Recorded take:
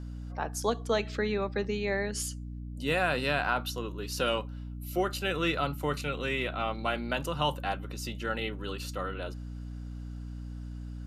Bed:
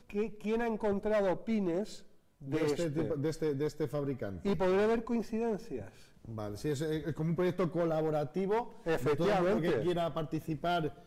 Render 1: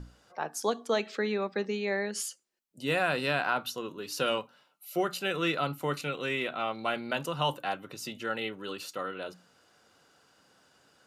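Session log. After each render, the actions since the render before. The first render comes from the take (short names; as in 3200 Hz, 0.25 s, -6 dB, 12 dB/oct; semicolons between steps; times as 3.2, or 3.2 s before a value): notches 60/120/180/240/300 Hz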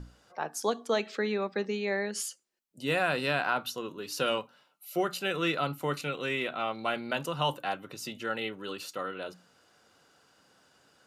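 nothing audible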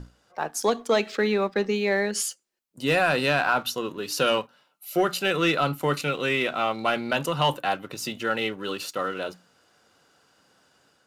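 AGC gain up to 3.5 dB; sample leveller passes 1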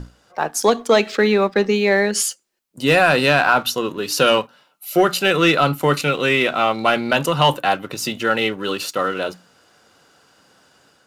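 gain +7.5 dB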